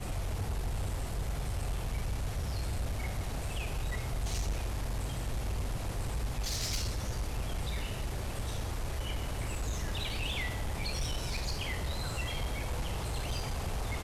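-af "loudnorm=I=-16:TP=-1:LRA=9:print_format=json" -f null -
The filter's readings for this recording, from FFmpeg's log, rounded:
"input_i" : "-36.4",
"input_tp" : "-26.8",
"input_lra" : "1.1",
"input_thresh" : "-46.4",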